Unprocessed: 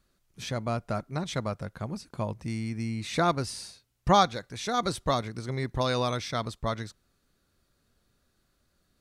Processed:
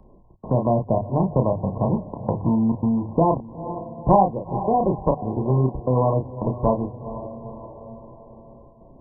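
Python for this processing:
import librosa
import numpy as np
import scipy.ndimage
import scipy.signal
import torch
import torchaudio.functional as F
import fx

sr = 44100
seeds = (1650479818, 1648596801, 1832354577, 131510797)

p1 = fx.block_float(x, sr, bits=3)
p2 = fx.rider(p1, sr, range_db=5, speed_s=0.5)
p3 = p1 + (p2 * 10.0 ** (0.0 / 20.0))
p4 = fx.step_gate(p3, sr, bpm=138, pattern='xxx.xxxxx.x', floor_db=-60.0, edge_ms=4.5)
p5 = fx.brickwall_lowpass(p4, sr, high_hz=1100.0)
p6 = fx.hum_notches(p5, sr, base_hz=50, count=3)
p7 = fx.doubler(p6, sr, ms=31.0, db=-5)
p8 = fx.echo_diffused(p7, sr, ms=462, feedback_pct=40, wet_db=-16.0)
p9 = fx.band_squash(p8, sr, depth_pct=40)
y = p9 * 10.0 ** (3.5 / 20.0)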